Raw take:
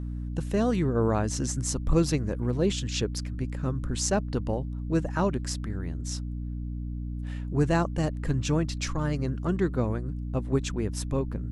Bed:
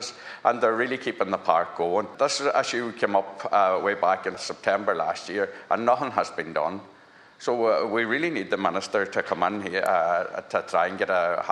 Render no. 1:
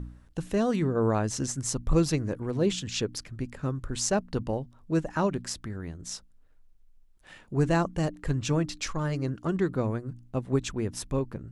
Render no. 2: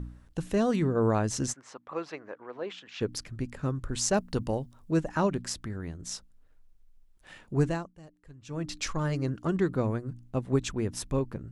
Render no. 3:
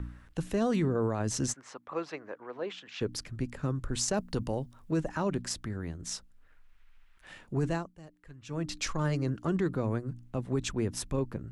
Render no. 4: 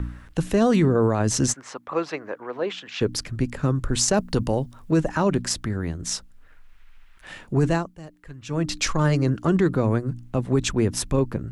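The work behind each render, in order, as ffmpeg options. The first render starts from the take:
ffmpeg -i in.wav -af "bandreject=frequency=60:width_type=h:width=4,bandreject=frequency=120:width_type=h:width=4,bandreject=frequency=180:width_type=h:width=4,bandreject=frequency=240:width_type=h:width=4,bandreject=frequency=300:width_type=h:width=4" out.wav
ffmpeg -i in.wav -filter_complex "[0:a]asplit=3[link_01][link_02][link_03];[link_01]afade=type=out:start_time=1.52:duration=0.02[link_04];[link_02]highpass=710,lowpass=2000,afade=type=in:start_time=1.52:duration=0.02,afade=type=out:start_time=3:duration=0.02[link_05];[link_03]afade=type=in:start_time=3:duration=0.02[link_06];[link_04][link_05][link_06]amix=inputs=3:normalize=0,asettb=1/sr,asplit=3[link_07][link_08][link_09];[link_07]atrim=end=4.144[link_10];[link_08]atrim=start=4.14:end=4.91,asetpts=PTS-STARTPTS,afade=type=in:duration=0.004:curve=qsin,afade=type=out:start_time=0.766:duration=0.004:curve=qsin,highshelf=frequency=5600:gain=9.5[link_11];[link_09]atrim=start=4.906[link_12];[link_10][link_11]acrossfade=duration=0.004:curve1=hsin:curve2=qsin[link_13];[link_13][link_12]acrossfade=duration=0.004:curve1=qsin:curve2=hsin,asplit=3[link_14][link_15][link_16];[link_14]atrim=end=7.97,asetpts=PTS-STARTPTS,afade=type=out:start_time=7.61:duration=0.36:curve=qua:silence=0.0749894[link_17];[link_15]atrim=start=7.97:end=8.37,asetpts=PTS-STARTPTS,volume=-22.5dB[link_18];[link_16]atrim=start=8.37,asetpts=PTS-STARTPTS,afade=type=in:duration=0.36:curve=qua:silence=0.0749894[link_19];[link_17][link_18][link_19]concat=n=3:v=0:a=1" out.wav
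ffmpeg -i in.wav -filter_complex "[0:a]acrossover=split=290|1300|2600[link_01][link_02][link_03][link_04];[link_03]acompressor=mode=upward:threshold=-53dB:ratio=2.5[link_05];[link_01][link_02][link_05][link_04]amix=inputs=4:normalize=0,alimiter=limit=-20.5dB:level=0:latency=1:release=10" out.wav
ffmpeg -i in.wav -af "volume=9.5dB" out.wav

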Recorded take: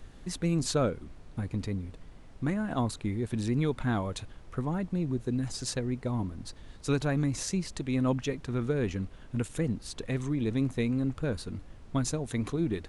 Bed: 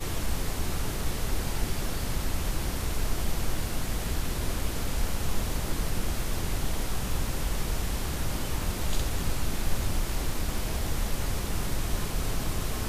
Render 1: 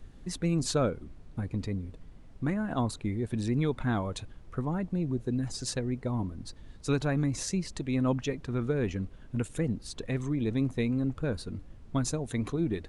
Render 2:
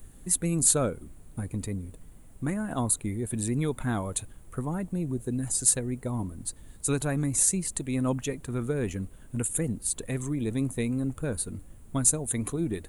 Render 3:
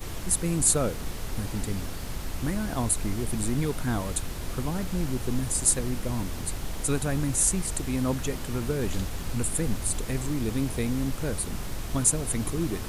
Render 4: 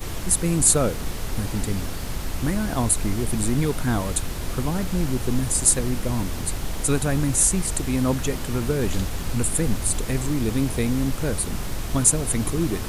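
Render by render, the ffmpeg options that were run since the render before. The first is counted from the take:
ffmpeg -i in.wav -af "afftdn=noise_reduction=6:noise_floor=-51" out.wav
ffmpeg -i in.wav -af "aexciter=amount=14.4:drive=4.3:freq=7700" out.wav
ffmpeg -i in.wav -i bed.wav -filter_complex "[1:a]volume=-4.5dB[link_01];[0:a][link_01]amix=inputs=2:normalize=0" out.wav
ffmpeg -i in.wav -af "volume=5dB,alimiter=limit=-3dB:level=0:latency=1" out.wav

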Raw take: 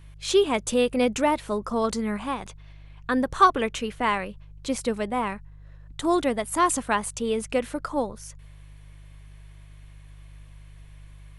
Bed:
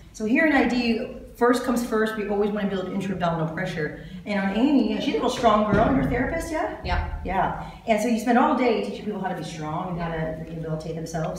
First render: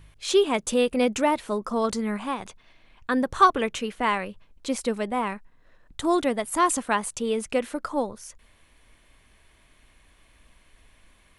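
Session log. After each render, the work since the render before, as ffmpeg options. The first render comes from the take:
ffmpeg -i in.wav -af "bandreject=frequency=50:width_type=h:width=4,bandreject=frequency=100:width_type=h:width=4,bandreject=frequency=150:width_type=h:width=4" out.wav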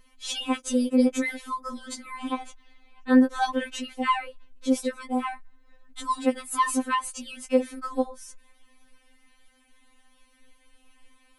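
ffmpeg -i in.wav -af "afftfilt=real='re*3.46*eq(mod(b,12),0)':imag='im*3.46*eq(mod(b,12),0)':win_size=2048:overlap=0.75" out.wav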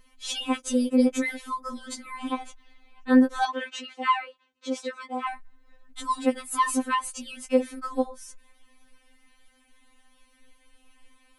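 ffmpeg -i in.wav -filter_complex "[0:a]asettb=1/sr,asplit=3[link_01][link_02][link_03];[link_01]atrim=end=3.454[link_04];[link_02]atrim=start=3.45:end=5.27,asetpts=PTS-STARTPTS,afade=type=in:duration=0.004:curve=qsin,afade=type=out:start_time=1.816:duration=0.004:curve=qsin,highpass=410,equalizer=frequency=610:width_type=q:width=4:gain=-6,equalizer=frequency=1200:width_type=q:width=4:gain=4,equalizer=frequency=5300:width_type=q:width=4:gain=-3,lowpass=frequency=7000:width=0.5412,lowpass=frequency=7000:width=1.3066[link_05];[link_03]atrim=start=5.266[link_06];[link_04][link_05]acrossfade=duration=0.004:curve1=hsin:curve2=qsin[link_07];[link_07][link_06]acrossfade=duration=0.004:curve1=qsin:curve2=hsin" out.wav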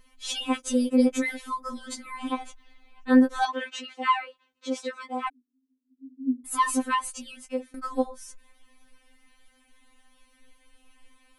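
ffmpeg -i in.wav -filter_complex "[0:a]asplit=3[link_01][link_02][link_03];[link_01]afade=type=out:start_time=5.28:duration=0.02[link_04];[link_02]asuperpass=centerf=320:order=20:qfactor=1.6,afade=type=in:start_time=5.28:duration=0.02,afade=type=out:start_time=6.44:duration=0.02[link_05];[link_03]afade=type=in:start_time=6.44:duration=0.02[link_06];[link_04][link_05][link_06]amix=inputs=3:normalize=0,asplit=2[link_07][link_08];[link_07]atrim=end=7.74,asetpts=PTS-STARTPTS,afade=type=out:start_time=7.06:duration=0.68:silence=0.112202[link_09];[link_08]atrim=start=7.74,asetpts=PTS-STARTPTS,afade=type=in:duration=0.004:curve=hsin:silence=0.112202[link_10];[link_09][link_10]concat=n=2:v=0:a=1" out.wav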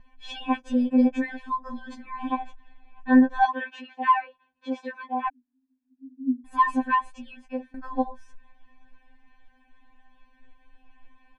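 ffmpeg -i in.wav -af "lowpass=1900,aecho=1:1:1.2:0.99" out.wav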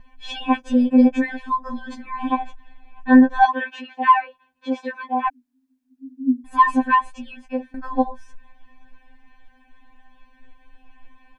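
ffmpeg -i in.wav -af "volume=6dB,alimiter=limit=-3dB:level=0:latency=1" out.wav

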